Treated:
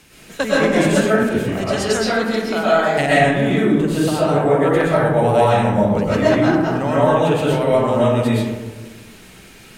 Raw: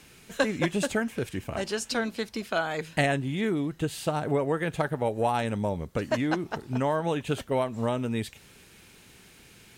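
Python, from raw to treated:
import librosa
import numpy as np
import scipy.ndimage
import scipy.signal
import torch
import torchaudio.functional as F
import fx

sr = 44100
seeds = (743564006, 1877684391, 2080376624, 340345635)

y = fx.rev_freeverb(x, sr, rt60_s=1.4, hf_ratio=0.35, predelay_ms=85, drr_db=-8.0)
y = y * 10.0 ** (3.0 / 20.0)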